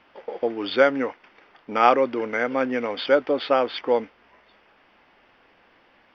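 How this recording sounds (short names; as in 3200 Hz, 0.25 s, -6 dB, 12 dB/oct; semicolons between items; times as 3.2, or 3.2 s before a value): noise floor -59 dBFS; spectral tilt -1.5 dB/oct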